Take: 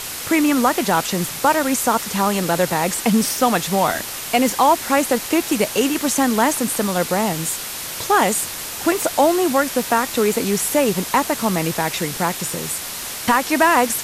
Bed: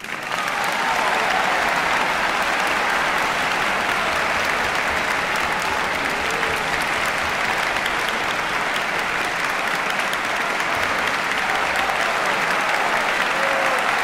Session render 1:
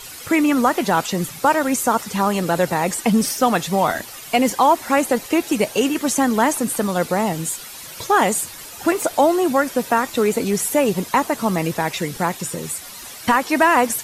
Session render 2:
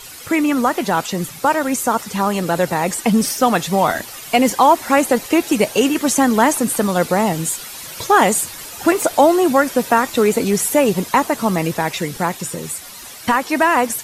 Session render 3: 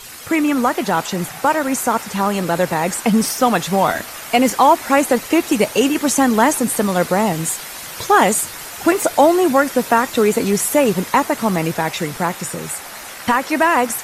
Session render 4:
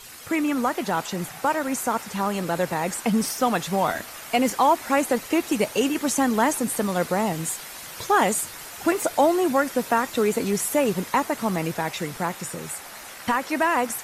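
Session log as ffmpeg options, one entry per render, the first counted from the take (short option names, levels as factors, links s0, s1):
-af "afftdn=nr=11:nf=-30"
-af "dynaudnorm=f=580:g=11:m=3.76"
-filter_complex "[1:a]volume=0.15[s0];[0:a][s0]amix=inputs=2:normalize=0"
-af "volume=0.447"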